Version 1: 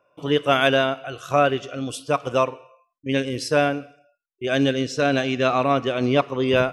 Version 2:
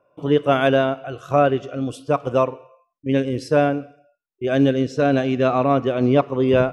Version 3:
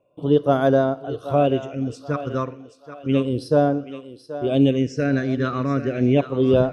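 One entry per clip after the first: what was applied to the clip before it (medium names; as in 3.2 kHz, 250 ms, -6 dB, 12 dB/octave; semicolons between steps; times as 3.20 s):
tilt shelf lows +6.5 dB, about 1.4 kHz; trim -2 dB
phase shifter stages 6, 0.32 Hz, lowest notch 740–2600 Hz; thinning echo 780 ms, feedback 38%, high-pass 390 Hz, level -11.5 dB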